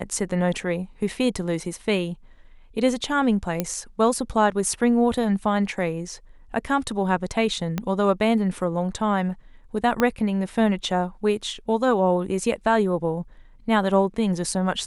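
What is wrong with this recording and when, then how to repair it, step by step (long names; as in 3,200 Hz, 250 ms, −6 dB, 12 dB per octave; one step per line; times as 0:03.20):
0:03.60: click −9 dBFS
0:07.78: click −12 dBFS
0:10.00: click −8 dBFS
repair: click removal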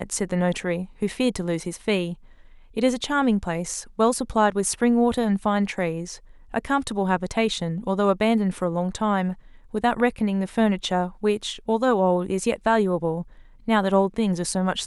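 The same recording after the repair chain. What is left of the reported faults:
0:07.78: click
0:10.00: click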